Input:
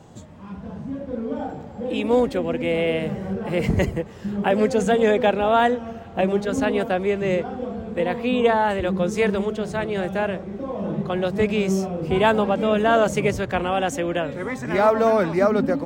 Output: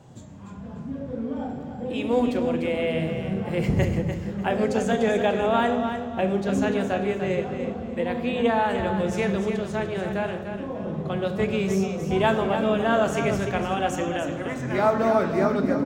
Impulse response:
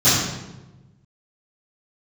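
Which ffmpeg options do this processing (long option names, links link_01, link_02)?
-filter_complex "[0:a]aecho=1:1:295|590|885|1180:0.398|0.119|0.0358|0.0107,asplit=2[link_01][link_02];[1:a]atrim=start_sample=2205,afade=type=out:start_time=0.31:duration=0.01,atrim=end_sample=14112[link_03];[link_02][link_03]afir=irnorm=-1:irlink=0,volume=-29dB[link_04];[link_01][link_04]amix=inputs=2:normalize=0,volume=-4.5dB"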